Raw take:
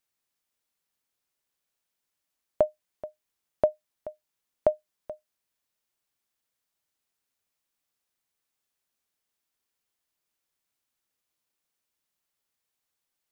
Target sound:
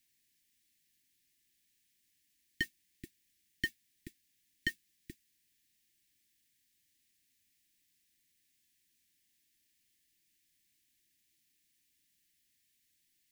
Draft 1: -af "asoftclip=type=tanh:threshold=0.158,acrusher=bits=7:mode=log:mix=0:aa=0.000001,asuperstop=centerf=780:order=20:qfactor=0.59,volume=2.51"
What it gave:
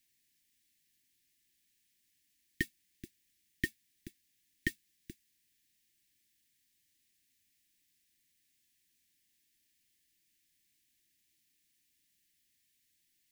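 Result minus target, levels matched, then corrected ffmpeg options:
saturation: distortion -7 dB
-af "asoftclip=type=tanh:threshold=0.0668,acrusher=bits=7:mode=log:mix=0:aa=0.000001,asuperstop=centerf=780:order=20:qfactor=0.59,volume=2.51"

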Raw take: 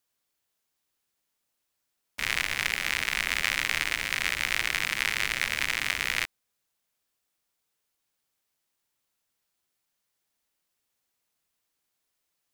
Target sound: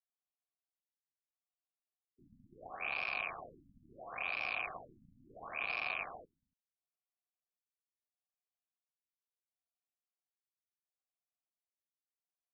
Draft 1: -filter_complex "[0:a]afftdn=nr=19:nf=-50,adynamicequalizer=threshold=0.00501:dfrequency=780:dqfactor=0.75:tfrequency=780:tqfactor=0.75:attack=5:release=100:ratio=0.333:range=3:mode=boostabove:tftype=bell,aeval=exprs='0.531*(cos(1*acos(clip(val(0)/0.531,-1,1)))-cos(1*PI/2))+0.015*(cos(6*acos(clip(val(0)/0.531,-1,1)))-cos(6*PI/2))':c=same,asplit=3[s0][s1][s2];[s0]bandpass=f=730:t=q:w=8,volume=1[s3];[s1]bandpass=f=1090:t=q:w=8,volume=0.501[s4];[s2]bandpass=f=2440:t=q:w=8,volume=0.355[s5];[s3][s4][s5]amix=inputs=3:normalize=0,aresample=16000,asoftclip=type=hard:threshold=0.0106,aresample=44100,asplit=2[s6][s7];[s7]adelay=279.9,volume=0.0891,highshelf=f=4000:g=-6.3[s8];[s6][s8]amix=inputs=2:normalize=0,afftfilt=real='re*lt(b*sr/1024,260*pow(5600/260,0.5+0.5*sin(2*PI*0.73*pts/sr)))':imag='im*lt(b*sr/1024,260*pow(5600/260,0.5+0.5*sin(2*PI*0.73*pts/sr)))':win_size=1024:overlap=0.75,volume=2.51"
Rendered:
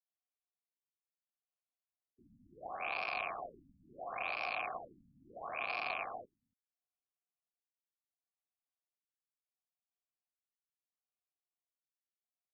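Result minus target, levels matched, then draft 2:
1 kHz band +5.5 dB
-filter_complex "[0:a]afftdn=nr=19:nf=-50,adynamicequalizer=threshold=0.00501:dfrequency=2100:dqfactor=0.75:tfrequency=2100:tqfactor=0.75:attack=5:release=100:ratio=0.333:range=3:mode=boostabove:tftype=bell,aeval=exprs='0.531*(cos(1*acos(clip(val(0)/0.531,-1,1)))-cos(1*PI/2))+0.015*(cos(6*acos(clip(val(0)/0.531,-1,1)))-cos(6*PI/2))':c=same,asplit=3[s0][s1][s2];[s0]bandpass=f=730:t=q:w=8,volume=1[s3];[s1]bandpass=f=1090:t=q:w=8,volume=0.501[s4];[s2]bandpass=f=2440:t=q:w=8,volume=0.355[s5];[s3][s4][s5]amix=inputs=3:normalize=0,aresample=16000,asoftclip=type=hard:threshold=0.0106,aresample=44100,asplit=2[s6][s7];[s7]adelay=279.9,volume=0.0891,highshelf=f=4000:g=-6.3[s8];[s6][s8]amix=inputs=2:normalize=0,afftfilt=real='re*lt(b*sr/1024,260*pow(5600/260,0.5+0.5*sin(2*PI*0.73*pts/sr)))':imag='im*lt(b*sr/1024,260*pow(5600/260,0.5+0.5*sin(2*PI*0.73*pts/sr)))':win_size=1024:overlap=0.75,volume=2.51"

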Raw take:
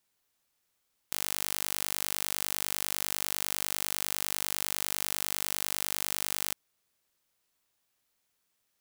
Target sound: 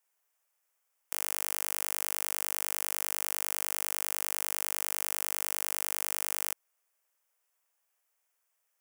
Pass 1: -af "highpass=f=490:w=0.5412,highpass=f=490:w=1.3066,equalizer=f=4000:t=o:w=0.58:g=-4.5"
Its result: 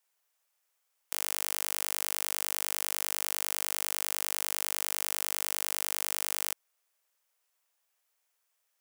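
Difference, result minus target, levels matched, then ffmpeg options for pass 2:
4 kHz band +3.5 dB
-af "highpass=f=490:w=0.5412,highpass=f=490:w=1.3066,equalizer=f=4000:t=o:w=0.58:g=-13"

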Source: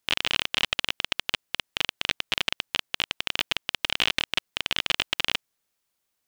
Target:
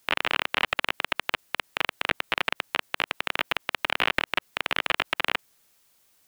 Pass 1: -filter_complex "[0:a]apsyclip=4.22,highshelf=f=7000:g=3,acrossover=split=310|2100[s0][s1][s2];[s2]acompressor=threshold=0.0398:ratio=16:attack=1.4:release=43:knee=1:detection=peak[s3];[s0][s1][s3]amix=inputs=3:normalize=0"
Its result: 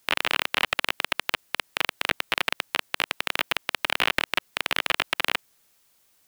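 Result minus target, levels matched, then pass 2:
compression: peak gain reduction -8 dB
-filter_complex "[0:a]apsyclip=4.22,highshelf=f=7000:g=3,acrossover=split=310|2100[s0][s1][s2];[s2]acompressor=threshold=0.015:ratio=16:attack=1.4:release=43:knee=1:detection=peak[s3];[s0][s1][s3]amix=inputs=3:normalize=0"

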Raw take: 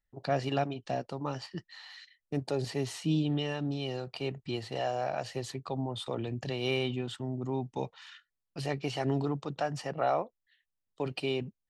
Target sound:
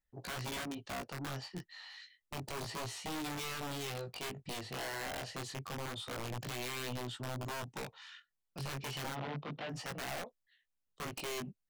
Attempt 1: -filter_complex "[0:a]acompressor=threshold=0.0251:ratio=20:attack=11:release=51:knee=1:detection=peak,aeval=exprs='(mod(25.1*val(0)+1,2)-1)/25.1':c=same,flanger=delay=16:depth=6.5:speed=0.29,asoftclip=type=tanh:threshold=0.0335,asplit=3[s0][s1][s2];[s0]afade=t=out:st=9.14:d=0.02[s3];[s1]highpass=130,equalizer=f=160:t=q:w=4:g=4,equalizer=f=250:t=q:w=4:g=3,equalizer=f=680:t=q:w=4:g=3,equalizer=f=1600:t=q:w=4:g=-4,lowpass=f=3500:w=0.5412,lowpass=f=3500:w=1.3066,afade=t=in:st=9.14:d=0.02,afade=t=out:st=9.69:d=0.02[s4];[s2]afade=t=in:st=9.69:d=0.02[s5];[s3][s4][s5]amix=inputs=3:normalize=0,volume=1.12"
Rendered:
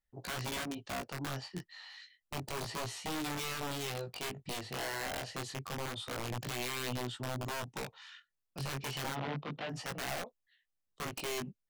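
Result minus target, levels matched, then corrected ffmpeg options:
saturation: distortion -9 dB
-filter_complex "[0:a]acompressor=threshold=0.0251:ratio=20:attack=11:release=51:knee=1:detection=peak,aeval=exprs='(mod(25.1*val(0)+1,2)-1)/25.1':c=same,flanger=delay=16:depth=6.5:speed=0.29,asoftclip=type=tanh:threshold=0.015,asplit=3[s0][s1][s2];[s0]afade=t=out:st=9.14:d=0.02[s3];[s1]highpass=130,equalizer=f=160:t=q:w=4:g=4,equalizer=f=250:t=q:w=4:g=3,equalizer=f=680:t=q:w=4:g=3,equalizer=f=1600:t=q:w=4:g=-4,lowpass=f=3500:w=0.5412,lowpass=f=3500:w=1.3066,afade=t=in:st=9.14:d=0.02,afade=t=out:st=9.69:d=0.02[s4];[s2]afade=t=in:st=9.69:d=0.02[s5];[s3][s4][s5]amix=inputs=3:normalize=0,volume=1.12"

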